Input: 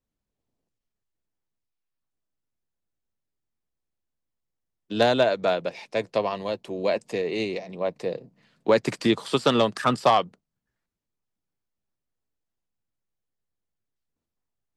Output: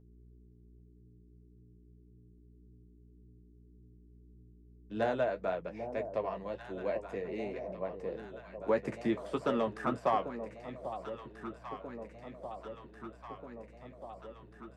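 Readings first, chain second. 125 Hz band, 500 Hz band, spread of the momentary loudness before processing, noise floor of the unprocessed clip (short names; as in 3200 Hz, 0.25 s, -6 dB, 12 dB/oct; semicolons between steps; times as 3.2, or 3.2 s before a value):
-10.0 dB, -9.5 dB, 11 LU, -85 dBFS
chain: short-mantissa float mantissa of 8-bit; EQ curve 1900 Hz 0 dB, 4100 Hz -15 dB, 6000 Hz -9 dB; buzz 60 Hz, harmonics 7, -47 dBFS -6 dB/oct; flange 1.8 Hz, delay 9.2 ms, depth 6.5 ms, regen -38%; on a send: echo with dull and thin repeats by turns 0.793 s, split 880 Hz, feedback 81%, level -9 dB; on the sum: gain -7 dB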